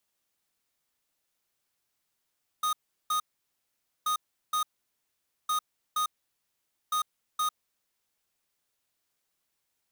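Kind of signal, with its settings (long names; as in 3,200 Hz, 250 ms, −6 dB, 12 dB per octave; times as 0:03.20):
beeps in groups square 1,240 Hz, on 0.10 s, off 0.37 s, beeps 2, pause 0.86 s, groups 4, −27.5 dBFS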